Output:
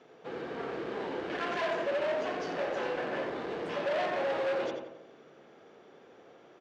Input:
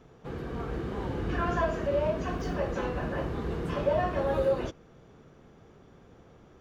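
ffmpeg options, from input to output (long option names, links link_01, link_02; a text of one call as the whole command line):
ffmpeg -i in.wav -filter_complex "[0:a]asplit=2[link_01][link_02];[link_02]adelay=88,lowpass=frequency=3100:poles=1,volume=-5dB,asplit=2[link_03][link_04];[link_04]adelay=88,lowpass=frequency=3100:poles=1,volume=0.5,asplit=2[link_05][link_06];[link_06]adelay=88,lowpass=frequency=3100:poles=1,volume=0.5,asplit=2[link_07][link_08];[link_08]adelay=88,lowpass=frequency=3100:poles=1,volume=0.5,asplit=2[link_09][link_10];[link_10]adelay=88,lowpass=frequency=3100:poles=1,volume=0.5,asplit=2[link_11][link_12];[link_12]adelay=88,lowpass=frequency=3100:poles=1,volume=0.5[link_13];[link_01][link_03][link_05][link_07][link_09][link_11][link_13]amix=inputs=7:normalize=0,asoftclip=type=hard:threshold=-29.5dB,highpass=410,lowpass=4900,equalizer=frequency=1100:width=2:gain=-5,volume=3.5dB" out.wav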